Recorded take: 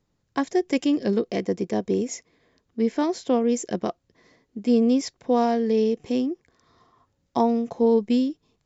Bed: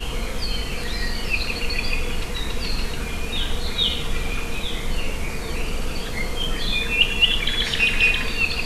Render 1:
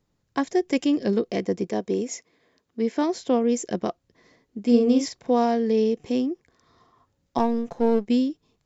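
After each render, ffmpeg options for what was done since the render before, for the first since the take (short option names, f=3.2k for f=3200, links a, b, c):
-filter_complex "[0:a]asettb=1/sr,asplit=3[a][b][c];[a]atrim=end=1.704[d];[b]atrim=start=1.7:end=2.98,asetpts=PTS-STARTPTS,afade=t=in:d=0.004:c=qsin,afade=t=out:st=1.276:d=0.004:c=qsin,highpass=f=210:p=1[e];[c]atrim=start=2.976[f];[d][e]acrossfade=d=0.004:c1=hsin:c2=qsin[g];[g][f]acrossfade=d=0.004:c1=qsin:c2=hsin,asettb=1/sr,asplit=3[h][i][j];[h]atrim=end=4.644[k];[i]atrim=start=4.64:end=5.31,asetpts=PTS-STARTPTS,afade=t=in:d=0.004:c=qsin,afade=t=out:st=0.666:d=0.004:c=qsin,asplit=2[l][m];[m]adelay=46,volume=-5.5dB[n];[l][n]amix=inputs=2:normalize=0,atrim=end_sample=29547[o];[j]atrim=start=5.306[p];[k][o]acrossfade=d=0.004:c1=hsin:c2=qsin[q];[q][p]acrossfade=d=0.004:c1=qsin:c2=hsin,asettb=1/sr,asplit=3[r][s][t];[r]atrim=end=7.384[u];[s]atrim=start=7.38:end=8.06,asetpts=PTS-STARTPTS,afade=t=in:d=0.004:c=qsin,afade=t=out:st=0.676:d=0.004:c=qsin,aeval=exprs='if(lt(val(0),0),0.447*val(0),val(0))':c=same[v];[t]atrim=start=8.056[w];[u][v]acrossfade=d=0.004:c1=hsin:c2=qsin[x];[x][w]acrossfade=d=0.004:c1=qsin:c2=hsin"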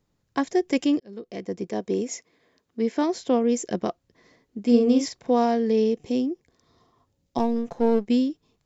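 -filter_complex "[0:a]asettb=1/sr,asplit=3[a][b][c];[a]atrim=end=5.984[d];[b]atrim=start=5.98:end=7.56,asetpts=PTS-STARTPTS,afade=t=in:d=0.004:c=qsin,afade=t=out:st=1.576:d=0.004:c=qsin,equalizer=f=1.4k:t=o:w=1.3:g=-7.5[e];[c]atrim=start=7.556[f];[d][e]acrossfade=d=0.004:c1=hsin:c2=qsin[g];[g][f]acrossfade=d=0.004:c1=qsin:c2=hsin,asplit=2[h][i];[h]atrim=end=1,asetpts=PTS-STARTPTS,afade=t=out:st=0.996:d=0.004:c=hsin[j];[i]atrim=start=1,asetpts=PTS-STARTPTS,afade=t=in:d=0.97[k];[j][k]concat=n=2:v=0:a=1"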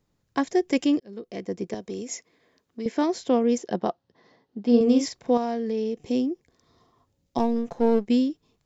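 -filter_complex "[0:a]asettb=1/sr,asplit=3[a][b][c];[a]atrim=end=1.744[d];[b]atrim=start=1.74:end=2.86,asetpts=PTS-STARTPTS,afade=t=in:d=0.004:c=qsin,afade=t=out:st=1.116:d=0.004:c=qsin,acrossover=split=130|3000[e][f][g];[f]acompressor=threshold=-33dB:ratio=3:attack=3.2:release=140:knee=2.83:detection=peak[h];[e][h][g]amix=inputs=3:normalize=0[i];[c]atrim=start=2.856[j];[d][i]acrossfade=d=0.004:c1=hsin:c2=qsin[k];[k][j]acrossfade=d=0.004:c1=qsin:c2=hsin,asettb=1/sr,asplit=3[l][m][n];[l]atrim=end=3.584[o];[m]atrim=start=3.58:end=4.81,asetpts=PTS-STARTPTS,afade=t=in:d=0.004:c=qsin,afade=t=out:st=1.226:d=0.004:c=qsin,highpass=120,equalizer=f=300:t=q:w=4:g=-3,equalizer=f=830:t=q:w=4:g=7,equalizer=f=2.3k:t=q:w=4:g=-8,lowpass=f=5k:w=0.5412,lowpass=f=5k:w=1.3066[p];[n]atrim=start=4.806[q];[o][p]acrossfade=d=0.004:c1=hsin:c2=qsin[r];[r][q]acrossfade=d=0.004:c1=qsin:c2=hsin,asettb=1/sr,asplit=3[s][t][u];[s]atrim=end=5.374[v];[t]atrim=start=5.37:end=6.04,asetpts=PTS-STARTPTS,afade=t=in:d=0.004:c=qsin,afade=t=out:st=0.666:d=0.004:c=qsin,acompressor=threshold=-28dB:ratio=2:attack=3.2:release=140:knee=1:detection=peak[w];[u]atrim=start=6.036[x];[v][w]acrossfade=d=0.004:c1=hsin:c2=qsin[y];[y][x]acrossfade=d=0.004:c1=qsin:c2=hsin"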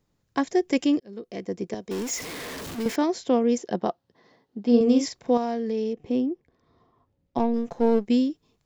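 -filter_complex "[0:a]asettb=1/sr,asplit=3[a][b][c];[a]atrim=end=1.914[d];[b]atrim=start=1.91:end=2.96,asetpts=PTS-STARTPTS,afade=t=in:d=0.004:c=qsin,afade=t=out:st=1.046:d=0.004:c=qsin,aeval=exprs='val(0)+0.5*0.0316*sgn(val(0))':c=same[e];[c]atrim=start=2.956[f];[d][e]acrossfade=d=0.004:c1=hsin:c2=qsin[g];[g][f]acrossfade=d=0.004:c1=qsin:c2=hsin,asettb=1/sr,asplit=3[h][i][j];[h]atrim=end=5.934[k];[i]atrim=start=5.93:end=7.54,asetpts=PTS-STARTPTS,afade=t=in:d=0.004:c=qsin,afade=t=out:st=1.606:d=0.004:c=qsin,adynamicsmooth=sensitivity=1:basefreq=2.9k[l];[j]atrim=start=7.536[m];[k][l]acrossfade=d=0.004:c1=hsin:c2=qsin[n];[n][m]acrossfade=d=0.004:c1=qsin:c2=hsin"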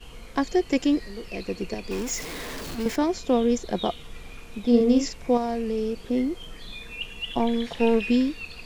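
-filter_complex "[1:a]volume=-16.5dB[a];[0:a][a]amix=inputs=2:normalize=0"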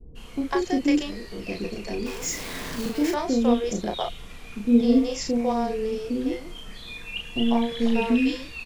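-filter_complex "[0:a]asplit=2[a][b];[b]adelay=34,volume=-4.5dB[c];[a][c]amix=inputs=2:normalize=0,acrossover=split=470[d][e];[e]adelay=150[f];[d][f]amix=inputs=2:normalize=0"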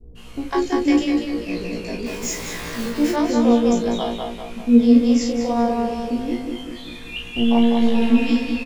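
-filter_complex "[0:a]asplit=2[a][b];[b]adelay=17,volume=-2dB[c];[a][c]amix=inputs=2:normalize=0,asplit=2[d][e];[e]adelay=197,lowpass=f=3.3k:p=1,volume=-3dB,asplit=2[f][g];[g]adelay=197,lowpass=f=3.3k:p=1,volume=0.52,asplit=2[h][i];[i]adelay=197,lowpass=f=3.3k:p=1,volume=0.52,asplit=2[j][k];[k]adelay=197,lowpass=f=3.3k:p=1,volume=0.52,asplit=2[l][m];[m]adelay=197,lowpass=f=3.3k:p=1,volume=0.52,asplit=2[n][o];[o]adelay=197,lowpass=f=3.3k:p=1,volume=0.52,asplit=2[p][q];[q]adelay=197,lowpass=f=3.3k:p=1,volume=0.52[r];[d][f][h][j][l][n][p][r]amix=inputs=8:normalize=0"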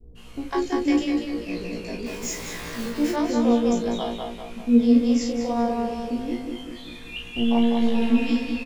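-af "volume=-4dB"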